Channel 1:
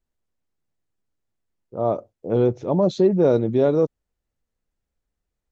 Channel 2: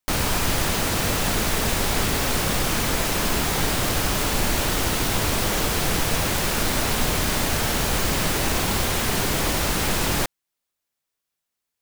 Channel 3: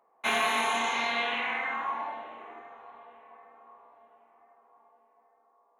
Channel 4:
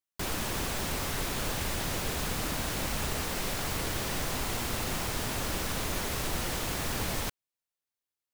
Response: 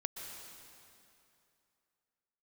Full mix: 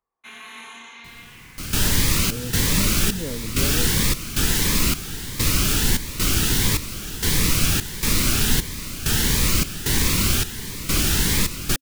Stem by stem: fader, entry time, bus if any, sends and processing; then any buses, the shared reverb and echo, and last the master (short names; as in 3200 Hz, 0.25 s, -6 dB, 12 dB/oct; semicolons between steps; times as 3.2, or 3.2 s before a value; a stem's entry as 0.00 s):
-12.0 dB, 0.00 s, no send, notch comb 370 Hz
+0.5 dB, 1.50 s, no send, step gate "..xxxxx..xxxxx.." 131 bpm -12 dB; cascading phaser rising 1.5 Hz
-12.0 dB, 0.00 s, no send, auto duck -9 dB, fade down 1.05 s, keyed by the first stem
-19.0 dB, 0.85 s, no send, bell 140 Hz +7.5 dB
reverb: off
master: bell 670 Hz -14.5 dB 1.1 oct; AGC gain up to 4.5 dB